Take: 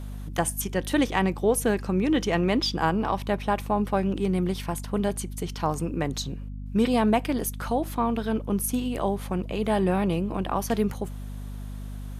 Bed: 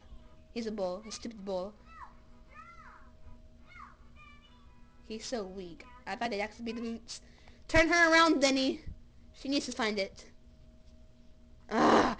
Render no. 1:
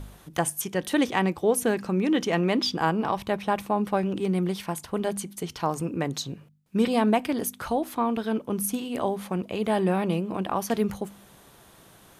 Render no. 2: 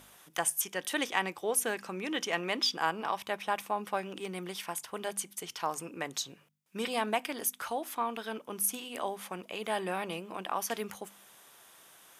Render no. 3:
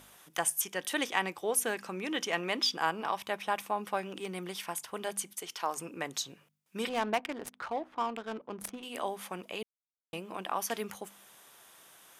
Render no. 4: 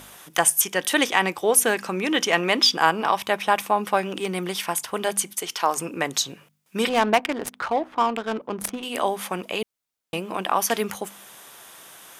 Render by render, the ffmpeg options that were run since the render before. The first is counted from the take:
ffmpeg -i in.wav -af "bandreject=frequency=50:width_type=h:width=4,bandreject=frequency=100:width_type=h:width=4,bandreject=frequency=150:width_type=h:width=4,bandreject=frequency=200:width_type=h:width=4,bandreject=frequency=250:width_type=h:width=4" out.wav
ffmpeg -i in.wav -af "highpass=frequency=1400:poles=1,equalizer=frequency=4200:width=7.6:gain=-6.5" out.wav
ffmpeg -i in.wav -filter_complex "[0:a]asettb=1/sr,asplit=3[link_01][link_02][link_03];[link_01]atrim=end=5.334[link_04];[link_02]atrim=start=5.33:end=5.77,asetpts=PTS-STARTPTS,afade=type=in:duration=0.004:curve=qsin,afade=type=out:start_time=0.436:duration=0.004:curve=qsin,highpass=260[link_05];[link_03]atrim=start=5.766[link_06];[link_04][link_05]acrossfade=duration=0.004:curve1=hsin:curve2=qsin[link_07];[link_07][link_06]acrossfade=duration=0.004:curve1=qsin:curve2=hsin,asettb=1/sr,asplit=3[link_08][link_09][link_10];[link_08]atrim=end=6.894[link_11];[link_09]atrim=start=6.89:end=8.83,asetpts=PTS-STARTPTS,afade=type=in:duration=0.004:curve=qsin,afade=type=out:start_time=1.936:duration=0.004:curve=qsin,adynamicsmooth=sensitivity=6.5:basefreq=850[link_12];[link_10]atrim=start=8.826[link_13];[link_11][link_12]acrossfade=duration=0.004:curve1=hsin:curve2=qsin[link_14];[link_14][link_13]acrossfade=duration=0.004:curve1=qsin:curve2=hsin,asplit=3[link_15][link_16][link_17];[link_15]atrim=end=9.63,asetpts=PTS-STARTPTS,afade=type=out:start_time=9.626:duration=0.004:curve=hsin[link_18];[link_16]atrim=start=9.63:end=10.13,asetpts=PTS-STARTPTS,volume=0[link_19];[link_17]atrim=start=10.13,asetpts=PTS-STARTPTS,afade=type=in:duration=0.004:curve=hsin[link_20];[link_18][link_19][link_20]concat=n=3:v=0:a=1" out.wav
ffmpeg -i in.wav -af "volume=11.5dB,alimiter=limit=-3dB:level=0:latency=1" out.wav

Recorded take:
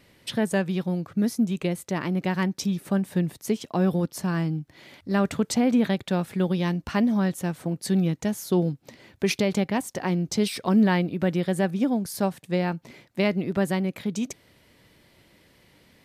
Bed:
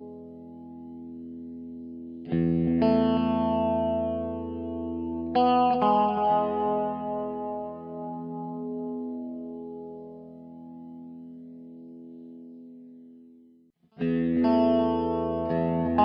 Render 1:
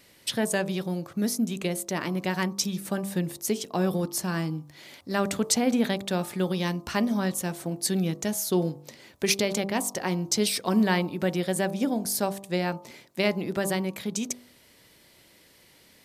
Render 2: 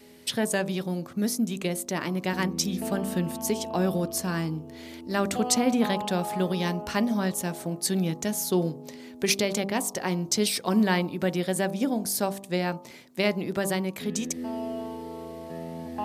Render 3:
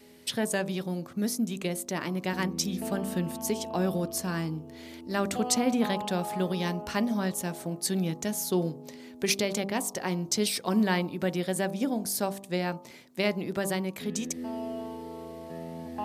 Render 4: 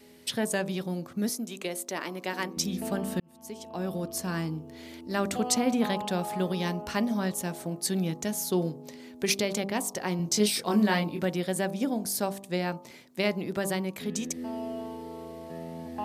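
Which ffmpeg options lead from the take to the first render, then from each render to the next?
ffmpeg -i in.wav -af "bass=frequency=250:gain=-5,treble=frequency=4000:gain=8,bandreject=frequency=49.09:width_type=h:width=4,bandreject=frequency=98.18:width_type=h:width=4,bandreject=frequency=147.27:width_type=h:width=4,bandreject=frequency=196.36:width_type=h:width=4,bandreject=frequency=245.45:width_type=h:width=4,bandreject=frequency=294.54:width_type=h:width=4,bandreject=frequency=343.63:width_type=h:width=4,bandreject=frequency=392.72:width_type=h:width=4,bandreject=frequency=441.81:width_type=h:width=4,bandreject=frequency=490.9:width_type=h:width=4,bandreject=frequency=539.99:width_type=h:width=4,bandreject=frequency=589.08:width_type=h:width=4,bandreject=frequency=638.17:width_type=h:width=4,bandreject=frequency=687.26:width_type=h:width=4,bandreject=frequency=736.35:width_type=h:width=4,bandreject=frequency=785.44:width_type=h:width=4,bandreject=frequency=834.53:width_type=h:width=4,bandreject=frequency=883.62:width_type=h:width=4,bandreject=frequency=932.71:width_type=h:width=4,bandreject=frequency=981.8:width_type=h:width=4,bandreject=frequency=1030.89:width_type=h:width=4,bandreject=frequency=1079.98:width_type=h:width=4,bandreject=frequency=1129.07:width_type=h:width=4,bandreject=frequency=1178.16:width_type=h:width=4,bandreject=frequency=1227.25:width_type=h:width=4,bandreject=frequency=1276.34:width_type=h:width=4" out.wav
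ffmpeg -i in.wav -i bed.wav -filter_complex "[1:a]volume=-11dB[link_01];[0:a][link_01]amix=inputs=2:normalize=0" out.wav
ffmpeg -i in.wav -af "volume=-2.5dB" out.wav
ffmpeg -i in.wav -filter_complex "[0:a]asettb=1/sr,asplit=3[link_01][link_02][link_03];[link_01]atrim=end=1.294[link_04];[link_02]atrim=start=1.29:end=2.57,asetpts=PTS-STARTPTS,afade=type=in:duration=0.004:curve=qsin,afade=type=out:start_time=1.276:duration=0.004:curve=qsin,highpass=320[link_05];[link_03]atrim=start=2.566[link_06];[link_04][link_05]acrossfade=duration=0.004:curve1=hsin:curve2=qsin[link_07];[link_07][link_06]acrossfade=duration=0.004:curve1=qsin:curve2=hsin,asettb=1/sr,asplit=3[link_08][link_09][link_10];[link_08]atrim=end=10.174[link_11];[link_09]atrim=start=10.17:end=11.25,asetpts=PTS-STARTPTS,afade=type=in:duration=0.004:curve=qsin,afade=type=out:start_time=1.076:duration=0.004:curve=qsin,asplit=2[link_12][link_13];[link_13]adelay=24,volume=-3.5dB[link_14];[link_12][link_14]amix=inputs=2:normalize=0,atrim=end_sample=47628[link_15];[link_10]atrim=start=11.246[link_16];[link_11][link_15]acrossfade=duration=0.004:curve1=hsin:curve2=qsin[link_17];[link_17][link_16]acrossfade=duration=0.004:curve1=qsin:curve2=hsin,asplit=2[link_18][link_19];[link_18]atrim=end=3.2,asetpts=PTS-STARTPTS,afade=type=out:start_time=3.196:duration=0.004:curve=hsin[link_20];[link_19]atrim=start=3.2,asetpts=PTS-STARTPTS,afade=type=in:duration=1.15[link_21];[link_20][link_21]concat=n=2:v=0:a=1" out.wav

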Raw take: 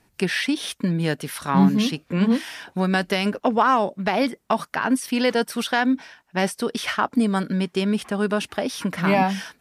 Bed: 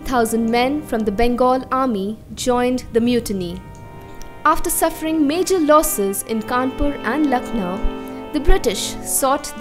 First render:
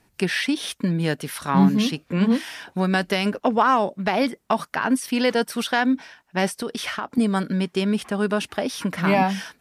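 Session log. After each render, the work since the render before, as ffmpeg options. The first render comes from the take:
ffmpeg -i in.wav -filter_complex "[0:a]asettb=1/sr,asplit=3[link_01][link_02][link_03];[link_01]atrim=end=6.624[link_04];[link_02]atrim=start=6.62:end=7.18,asetpts=PTS-STARTPTS,afade=type=in:duration=0.004:curve=qsin,afade=type=out:start_time=0.556:duration=0.004:curve=qsin,acompressor=threshold=-24dB:ratio=4:attack=3.2:release=140:knee=1:detection=peak[link_05];[link_03]atrim=start=7.176[link_06];[link_04][link_05]acrossfade=duration=0.004:curve1=hsin:curve2=qsin[link_07];[link_07][link_06]acrossfade=duration=0.004:curve1=qsin:curve2=hsin" out.wav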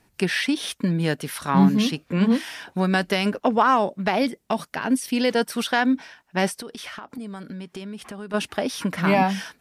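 ffmpeg -i in.wav -filter_complex "[0:a]asettb=1/sr,asplit=3[link_01][link_02][link_03];[link_01]atrim=end=4.184[link_04];[link_02]atrim=start=4.18:end=5.35,asetpts=PTS-STARTPTS,afade=type=in:duration=0.004:curve=qsin,afade=type=out:start_time=1.166:duration=0.004:curve=qsin,equalizer=frequency=1200:width_type=o:width=1.2:gain=-7[link_05];[link_03]atrim=start=5.346[link_06];[link_04][link_05]acrossfade=duration=0.004:curve1=hsin:curve2=qsin[link_07];[link_07][link_06]acrossfade=duration=0.004:curve1=qsin:curve2=hsin,asplit=3[link_08][link_09][link_10];[link_08]afade=type=out:start_time=6.6:duration=0.02[link_11];[link_09]acompressor=threshold=-34dB:ratio=4:attack=3.2:release=140:knee=1:detection=peak,afade=type=in:start_time=6.6:duration=0.02,afade=type=out:start_time=8.33:duration=0.02[link_12];[link_10]afade=type=in:start_time=8.33:duration=0.02[link_13];[link_11][link_12][link_13]amix=inputs=3:normalize=0" out.wav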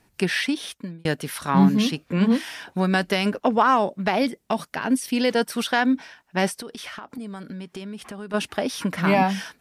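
ffmpeg -i in.wav -filter_complex "[0:a]asplit=2[link_01][link_02];[link_01]atrim=end=1.05,asetpts=PTS-STARTPTS,afade=type=out:start_time=0.4:duration=0.65[link_03];[link_02]atrim=start=1.05,asetpts=PTS-STARTPTS,afade=type=in:duration=0.004:curve=hsin[link_04];[link_03][link_04]concat=n=2:v=0:a=1" out.wav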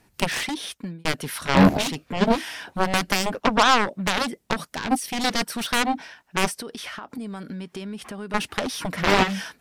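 ffmpeg -i in.wav -af "aeval=exprs='0.501*(cos(1*acos(clip(val(0)/0.501,-1,1)))-cos(1*PI/2))+0.158*(cos(7*acos(clip(val(0)/0.501,-1,1)))-cos(7*PI/2))':channel_layout=same" out.wav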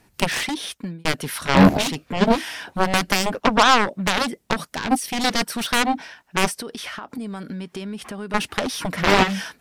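ffmpeg -i in.wav -af "volume=2.5dB,alimiter=limit=-2dB:level=0:latency=1" out.wav

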